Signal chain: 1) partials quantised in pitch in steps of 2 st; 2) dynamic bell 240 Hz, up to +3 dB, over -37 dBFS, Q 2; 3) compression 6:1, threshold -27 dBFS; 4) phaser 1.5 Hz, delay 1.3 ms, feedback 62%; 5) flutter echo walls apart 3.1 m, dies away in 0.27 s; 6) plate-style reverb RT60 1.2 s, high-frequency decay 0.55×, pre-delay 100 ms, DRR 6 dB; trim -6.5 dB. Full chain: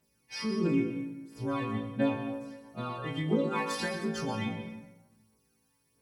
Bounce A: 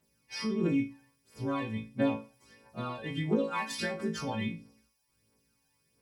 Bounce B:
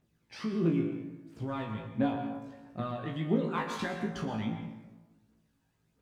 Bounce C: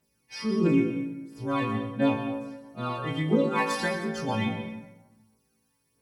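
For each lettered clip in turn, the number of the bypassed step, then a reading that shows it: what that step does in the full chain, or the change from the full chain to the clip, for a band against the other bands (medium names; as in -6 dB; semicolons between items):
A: 6, momentary loudness spread change -2 LU; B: 1, 8 kHz band -6.0 dB; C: 3, mean gain reduction 3.0 dB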